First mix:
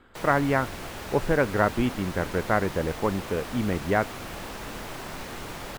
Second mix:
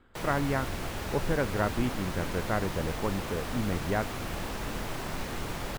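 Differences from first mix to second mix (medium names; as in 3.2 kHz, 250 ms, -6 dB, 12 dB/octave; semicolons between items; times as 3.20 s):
speech -7.5 dB; master: add bass shelf 200 Hz +6 dB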